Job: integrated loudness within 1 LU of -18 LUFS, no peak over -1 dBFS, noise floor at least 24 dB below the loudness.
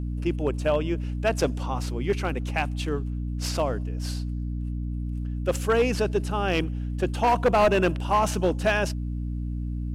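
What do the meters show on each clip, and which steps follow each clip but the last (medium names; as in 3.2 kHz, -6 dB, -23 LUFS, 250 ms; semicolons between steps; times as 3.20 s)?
clipped samples 1.0%; clipping level -15.0 dBFS; hum 60 Hz; highest harmonic 300 Hz; hum level -27 dBFS; loudness -26.5 LUFS; peak level -15.0 dBFS; loudness target -18.0 LUFS
-> clip repair -15 dBFS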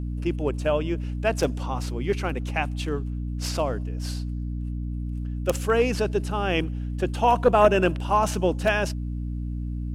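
clipped samples 0.0%; hum 60 Hz; highest harmonic 300 Hz; hum level -27 dBFS
-> de-hum 60 Hz, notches 5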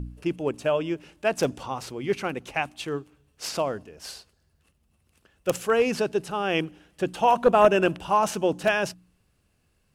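hum not found; loudness -25.5 LUFS; peak level -5.5 dBFS; loudness target -18.0 LUFS
-> trim +7.5 dB; peak limiter -1 dBFS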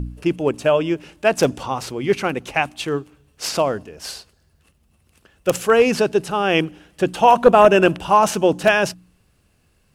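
loudness -18.5 LUFS; peak level -1.0 dBFS; noise floor -61 dBFS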